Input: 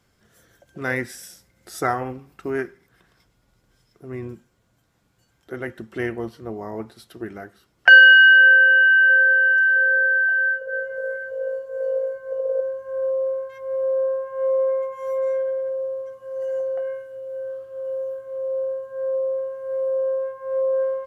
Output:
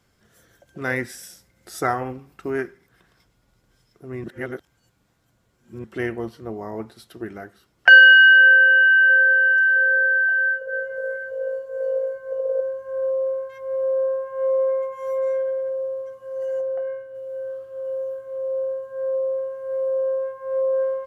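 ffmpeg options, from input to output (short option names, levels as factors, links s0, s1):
-filter_complex "[0:a]asplit=3[s0][s1][s2];[s0]afade=t=out:st=16.6:d=0.02[s3];[s1]highshelf=f=3500:g=-11.5,afade=t=in:st=16.6:d=0.02,afade=t=out:st=17.14:d=0.02[s4];[s2]afade=t=in:st=17.14:d=0.02[s5];[s3][s4][s5]amix=inputs=3:normalize=0,asplit=3[s6][s7][s8];[s6]atrim=end=4.242[s9];[s7]atrim=start=4.238:end=5.842,asetpts=PTS-STARTPTS,areverse[s10];[s8]atrim=start=5.838[s11];[s9][s10]acrossfade=d=0.004:c1=hsin:c2=hsin[s12];[s12][s11]acrossfade=d=0.004:c1=hsin:c2=hsin"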